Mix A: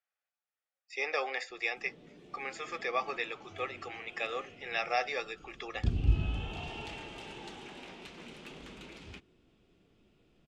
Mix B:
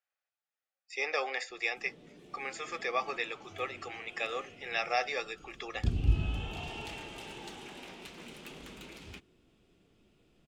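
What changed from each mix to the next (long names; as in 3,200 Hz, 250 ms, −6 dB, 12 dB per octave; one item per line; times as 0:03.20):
master: remove high-frequency loss of the air 55 metres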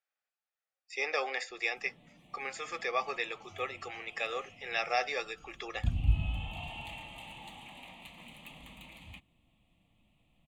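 background: add phaser with its sweep stopped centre 1,500 Hz, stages 6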